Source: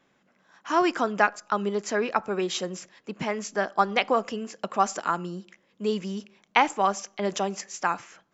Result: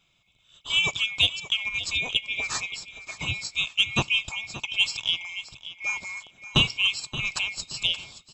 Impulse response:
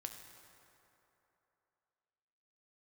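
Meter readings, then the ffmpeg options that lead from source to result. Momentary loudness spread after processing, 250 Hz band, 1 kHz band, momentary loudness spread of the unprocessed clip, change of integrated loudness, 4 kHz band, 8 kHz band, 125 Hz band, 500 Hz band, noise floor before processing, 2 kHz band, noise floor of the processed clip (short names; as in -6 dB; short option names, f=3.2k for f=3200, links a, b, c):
12 LU, -9.0 dB, -15.5 dB, 12 LU, +1.5 dB, +13.5 dB, n/a, +4.5 dB, -16.5 dB, -68 dBFS, +4.5 dB, -65 dBFS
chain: -af "afftfilt=real='real(if(lt(b,920),b+92*(1-2*mod(floor(b/92),2)),b),0)':imag='imag(if(lt(b,920),b+92*(1-2*mod(floor(b/92),2)),b),0)':win_size=2048:overlap=0.75,equalizer=f=125:t=o:w=1:g=5,equalizer=f=250:t=o:w=1:g=-4,equalizer=f=500:t=o:w=1:g=-7,equalizer=f=2k:t=o:w=1:g=-9,aecho=1:1:575|1150|1725:0.188|0.0471|0.0118,acontrast=82,volume=-3dB"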